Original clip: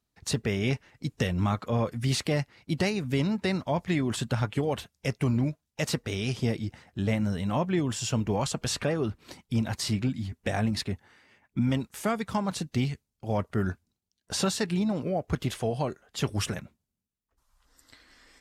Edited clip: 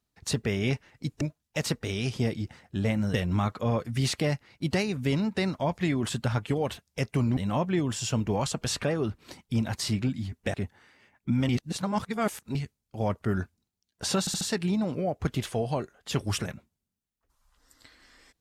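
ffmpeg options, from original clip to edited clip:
-filter_complex "[0:a]asplit=10[s0][s1][s2][s3][s4][s5][s6][s7][s8][s9];[s0]atrim=end=1.212[s10];[s1]atrim=start=5.438:end=7.372[s11];[s2]atrim=start=1.208:end=5.442[s12];[s3]atrim=start=7.368:end=10.542[s13];[s4]atrim=start=10.828:end=11.782[s14];[s5]atrim=start=11.778:end=12.842,asetpts=PTS-STARTPTS,areverse[s15];[s6]atrim=start=12.838:end=14.562[s16];[s7]atrim=start=14.488:end=14.562[s17];[s8]atrim=start=14.488:end=14.562[s18];[s9]atrim=start=14.488[s19];[s10][s11]acrossfade=d=0.004:c1=hsin:c2=hsin[s20];[s20][s12]acrossfade=d=0.004:c1=hsin:c2=hsin[s21];[s21][s13]acrossfade=d=0.004:c1=hsin:c2=hsin[s22];[s22][s14]acrossfade=d=0.004:c1=hsin:c2=hsin[s23];[s23][s15]acrossfade=d=0.004:c1=hsin:c2=hsin[s24];[s24][s16]acrossfade=d=0.004:c1=hsin:c2=hsin[s25];[s25][s17]acrossfade=d=0.004:c1=hsin:c2=hsin[s26];[s26][s18]acrossfade=d=0.004:c1=hsin:c2=hsin[s27];[s27][s19]acrossfade=d=0.004:c1=hsin:c2=hsin"

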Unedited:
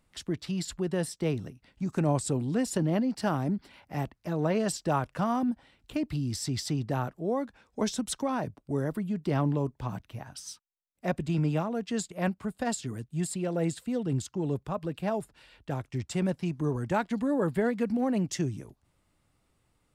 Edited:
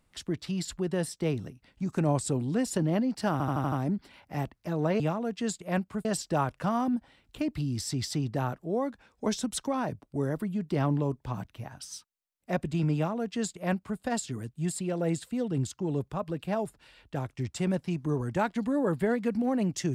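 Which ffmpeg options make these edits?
-filter_complex "[0:a]asplit=8[s0][s1][s2][s3][s4][s5][s6][s7];[s0]atrim=end=3.402[s8];[s1]atrim=start=3.318:end=3.402[s9];[s2]atrim=start=3.318:end=3.402[s10];[s3]atrim=start=3.318:end=3.402[s11];[s4]atrim=start=3.318:end=3.402[s12];[s5]atrim=start=3.318:end=4.602[s13];[s6]atrim=start=11.498:end=12.552[s14];[s7]atrim=start=4.598[s15];[s8][s9]acrossfade=d=0.004:c1=hsin:c2=hsin[s16];[s16][s10]acrossfade=d=0.004:c1=hsin:c2=hsin[s17];[s17][s11]acrossfade=d=0.004:c1=hsin:c2=hsin[s18];[s18][s12]acrossfade=d=0.004:c1=hsin:c2=hsin[s19];[s19][s13]acrossfade=d=0.004:c1=hsin:c2=hsin[s20];[s20][s14]acrossfade=d=0.004:c1=hsin:c2=hsin[s21];[s21][s15]acrossfade=d=0.004:c1=hsin:c2=hsin"

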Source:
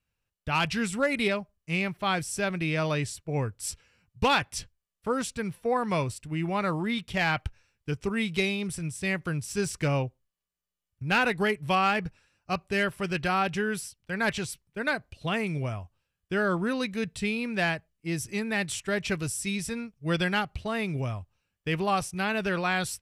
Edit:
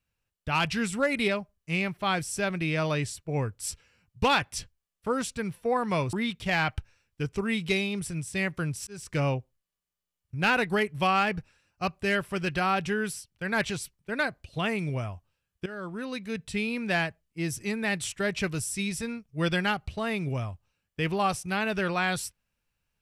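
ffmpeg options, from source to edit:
-filter_complex "[0:a]asplit=4[s0][s1][s2][s3];[s0]atrim=end=6.132[s4];[s1]atrim=start=6.808:end=9.55,asetpts=PTS-STARTPTS,afade=t=out:st=2.738:d=0.004:c=hsin[s5];[s2]atrim=start=9.55:end=16.34,asetpts=PTS-STARTPTS,afade=t=in:d=0.35,afade=t=out:st=6.786:d=0.004:c=hsin:silence=0.158489[s6];[s3]atrim=start=16.34,asetpts=PTS-STARTPTS,afade=t=in:d=1.03:silence=0.158489[s7];[s5][s6][s7]concat=n=3:v=0:a=1[s8];[s4][s8]acrossfade=d=0.004:c1=hsin:c2=hsin"

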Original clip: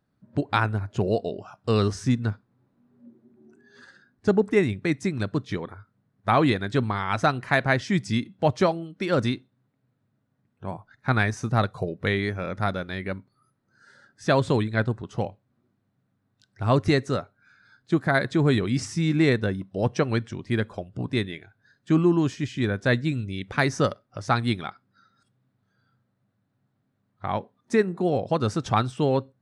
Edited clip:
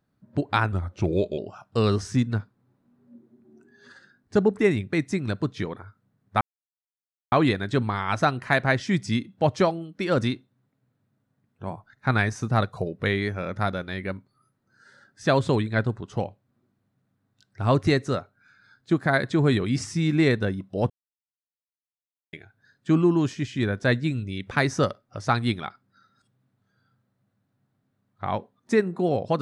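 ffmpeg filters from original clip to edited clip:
-filter_complex "[0:a]asplit=6[s0][s1][s2][s3][s4][s5];[s0]atrim=end=0.724[s6];[s1]atrim=start=0.72:end=1.3,asetpts=PTS-STARTPTS,asetrate=38808,aresample=44100[s7];[s2]atrim=start=1.296:end=6.33,asetpts=PTS-STARTPTS,afade=t=out:st=5.03:d=0.004:c=hsin,apad=pad_dur=0.91[s8];[s3]atrim=start=6.33:end=19.91,asetpts=PTS-STARTPTS,afade=t=in:d=0.004:c=hsin,afade=t=out:st=13.576:d=0.004:c=hsin[s9];[s4]atrim=start=19.91:end=21.34,asetpts=PTS-STARTPTS,volume=0[s10];[s5]atrim=start=21.34,asetpts=PTS-STARTPTS,afade=t=in:d=0.004:c=hsin[s11];[s6][s7]acrossfade=d=0.004:c1=hsin:c2=hsin[s12];[s8][s9][s10][s11]concat=n=4:v=0:a=1[s13];[s12][s13]acrossfade=d=0.004:c1=hsin:c2=hsin"

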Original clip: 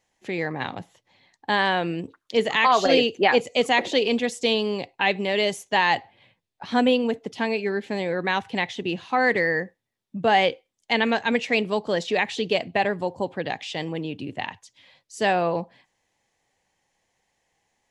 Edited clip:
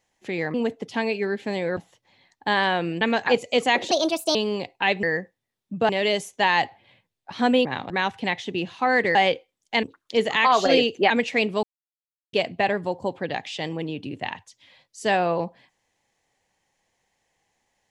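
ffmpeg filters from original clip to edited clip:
-filter_complex "[0:a]asplit=16[s0][s1][s2][s3][s4][s5][s6][s7][s8][s9][s10][s11][s12][s13][s14][s15];[s0]atrim=end=0.542[s16];[s1]atrim=start=6.978:end=8.212[s17];[s2]atrim=start=0.788:end=2.032[s18];[s3]atrim=start=10.998:end=11.262[s19];[s4]atrim=start=3.298:end=3.944[s20];[s5]atrim=start=3.94:end=4.54,asetpts=PTS-STARTPTS,asetrate=59976,aresample=44100[s21];[s6]atrim=start=4.536:end=5.222[s22];[s7]atrim=start=9.458:end=10.322[s23];[s8]atrim=start=5.218:end=6.982[s24];[s9]atrim=start=0.538:end=0.792[s25];[s10]atrim=start=8.208:end=9.462[s26];[s11]atrim=start=10.318:end=11.002[s27];[s12]atrim=start=2.028:end=3.302[s28];[s13]atrim=start=11.258:end=11.79,asetpts=PTS-STARTPTS,afade=t=out:st=0.528:d=0.004:c=hsin[s29];[s14]atrim=start=11.79:end=12.49,asetpts=PTS-STARTPTS,volume=0[s30];[s15]atrim=start=12.49,asetpts=PTS-STARTPTS,afade=t=in:d=0.004:c=hsin[s31];[s16][s17]acrossfade=d=0.004:c1=hsin:c2=hsin[s32];[s32][s18]acrossfade=d=0.004:c1=hsin:c2=hsin[s33];[s33][s19]acrossfade=d=0.004:c1=hsin:c2=hsin[s34];[s34][s20]acrossfade=d=0.004:c1=hsin:c2=hsin[s35];[s35][s21]acrossfade=d=0.004:c1=hsin:c2=hsin[s36];[s36][s22]acrossfade=d=0.004:c1=hsin:c2=hsin[s37];[s37][s23]acrossfade=d=0.004:c1=hsin:c2=hsin[s38];[s38][s24]acrossfade=d=0.004:c1=hsin:c2=hsin[s39];[s39][s25]acrossfade=d=0.004:c1=hsin:c2=hsin[s40];[s40][s26]acrossfade=d=0.004:c1=hsin:c2=hsin[s41];[s41][s27]acrossfade=d=0.004:c1=hsin:c2=hsin[s42];[s42][s28]acrossfade=d=0.004:c1=hsin:c2=hsin[s43];[s29][s30][s31]concat=n=3:v=0:a=1[s44];[s43][s44]acrossfade=d=0.004:c1=hsin:c2=hsin"

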